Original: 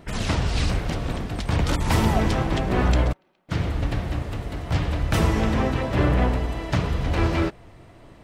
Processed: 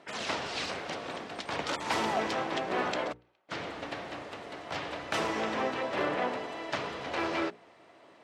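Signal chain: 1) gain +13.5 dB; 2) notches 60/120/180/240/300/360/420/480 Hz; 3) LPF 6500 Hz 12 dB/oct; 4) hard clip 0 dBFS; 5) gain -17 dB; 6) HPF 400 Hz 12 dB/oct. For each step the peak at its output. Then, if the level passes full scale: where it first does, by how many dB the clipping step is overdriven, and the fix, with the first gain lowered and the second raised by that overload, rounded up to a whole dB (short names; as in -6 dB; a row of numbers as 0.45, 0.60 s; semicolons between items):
+6.0, +6.0, +5.5, 0.0, -17.0, -16.0 dBFS; step 1, 5.5 dB; step 1 +7.5 dB, step 5 -11 dB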